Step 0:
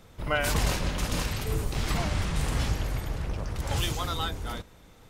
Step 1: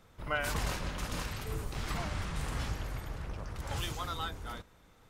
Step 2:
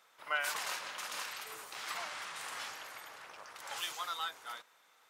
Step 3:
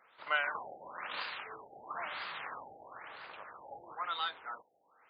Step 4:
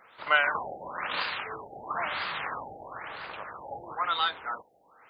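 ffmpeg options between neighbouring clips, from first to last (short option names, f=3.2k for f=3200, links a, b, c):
-af "equalizer=f=1.3k:w=1.1:g=4.5,volume=-8.5dB"
-af "highpass=900,volume=1dB"
-af "afftfilt=real='re*lt(b*sr/1024,830*pow(5000/830,0.5+0.5*sin(2*PI*1*pts/sr)))':imag='im*lt(b*sr/1024,830*pow(5000/830,0.5+0.5*sin(2*PI*1*pts/sr)))':win_size=1024:overlap=0.75,volume=2.5dB"
-af "lowshelf=f=180:g=9.5,volume=8.5dB"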